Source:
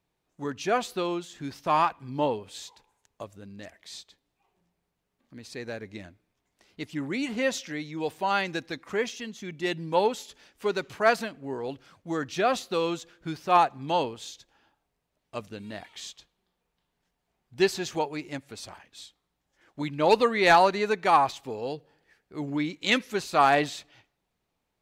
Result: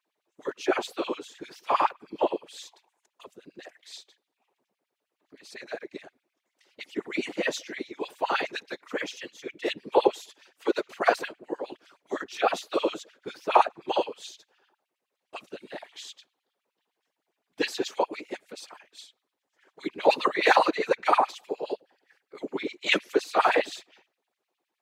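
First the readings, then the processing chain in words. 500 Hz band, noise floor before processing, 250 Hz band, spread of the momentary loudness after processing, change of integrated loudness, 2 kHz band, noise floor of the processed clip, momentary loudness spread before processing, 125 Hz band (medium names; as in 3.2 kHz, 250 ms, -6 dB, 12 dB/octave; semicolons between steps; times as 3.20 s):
-0.5 dB, -80 dBFS, -3.0 dB, 21 LU, -1.0 dB, -0.5 dB, -85 dBFS, 21 LU, under -15 dB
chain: whisper effect; bass shelf 320 Hz +7 dB; LFO high-pass sine 9.7 Hz 340–3100 Hz; trim -3.5 dB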